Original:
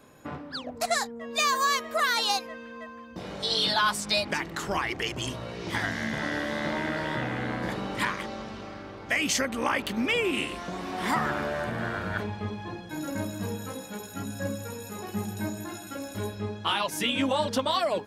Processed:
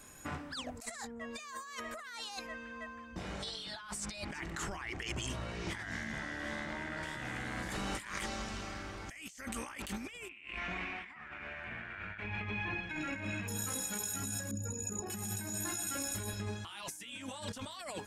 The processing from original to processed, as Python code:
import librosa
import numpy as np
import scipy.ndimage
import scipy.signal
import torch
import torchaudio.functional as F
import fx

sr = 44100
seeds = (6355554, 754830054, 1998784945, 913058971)

y = fx.lowpass(x, sr, hz=2200.0, slope=6, at=(0.91, 7.03))
y = fx.lowpass_res(y, sr, hz=2400.0, q=4.9, at=(10.29, 13.48))
y = fx.envelope_sharpen(y, sr, power=2.0, at=(14.51, 15.1))
y = fx.graphic_eq(y, sr, hz=(125, 250, 500, 1000, 4000, 8000), db=(-8, -6, -10, -5, -5, 10))
y = fx.over_compress(y, sr, threshold_db=-41.0, ratio=-1.0)
y = fx.low_shelf(y, sr, hz=61.0, db=6.5)
y = y * librosa.db_to_amplitude(-1.5)